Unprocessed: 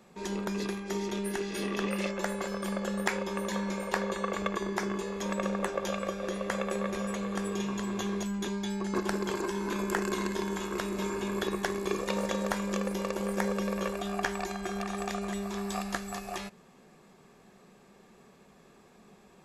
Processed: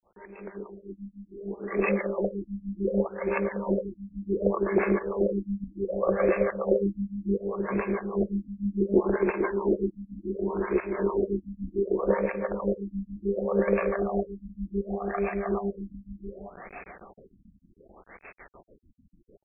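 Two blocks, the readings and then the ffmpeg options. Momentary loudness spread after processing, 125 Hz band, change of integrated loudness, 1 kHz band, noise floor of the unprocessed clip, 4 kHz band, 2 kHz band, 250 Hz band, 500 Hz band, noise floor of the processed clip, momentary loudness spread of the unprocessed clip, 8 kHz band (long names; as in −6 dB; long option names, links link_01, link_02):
17 LU, +2.5 dB, +4.5 dB, −0.5 dB, −58 dBFS, below −40 dB, −1.0 dB, +3.0 dB, +7.0 dB, −62 dBFS, 3 LU, below −40 dB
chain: -filter_complex "[0:a]acrossover=split=600|3400[link_01][link_02][link_03];[link_03]aexciter=amount=9.9:drive=9.1:freq=5300[link_04];[link_01][link_02][link_04]amix=inputs=3:normalize=0,acrossover=split=530[link_05][link_06];[link_05]aeval=exprs='val(0)*(1-1/2+1/2*cos(2*PI*6.7*n/s))':channel_layout=same[link_07];[link_06]aeval=exprs='val(0)*(1-1/2-1/2*cos(2*PI*6.7*n/s))':channel_layout=same[link_08];[link_07][link_08]amix=inputs=2:normalize=0,acompressor=threshold=-28dB:ratio=4,asplit=2[link_09][link_10];[link_10]aecho=0:1:439|878|1317|1756|2195|2634:0.178|0.105|0.0619|0.0365|0.0215|0.0127[link_11];[link_09][link_11]amix=inputs=2:normalize=0,acrusher=bits=7:mix=0:aa=0.000001,alimiter=limit=-21dB:level=0:latency=1:release=279,adynamicequalizer=threshold=0.00251:dfrequency=440:dqfactor=0.81:tfrequency=440:tqfactor=0.81:attack=5:release=100:ratio=0.375:range=3:mode=boostabove:tftype=bell,dynaudnorm=framelen=660:gausssize=5:maxgain=16dB,equalizer=frequency=125:width_type=o:width=1:gain=-8,equalizer=frequency=250:width_type=o:width=1:gain=-5,equalizer=frequency=1000:width_type=o:width=1:gain=-5,equalizer=frequency=4000:width_type=o:width=1:gain=9,afftfilt=real='re*lt(b*sr/1024,260*pow(2700/260,0.5+0.5*sin(2*PI*0.67*pts/sr)))':imag='im*lt(b*sr/1024,260*pow(2700/260,0.5+0.5*sin(2*PI*0.67*pts/sr)))':win_size=1024:overlap=0.75"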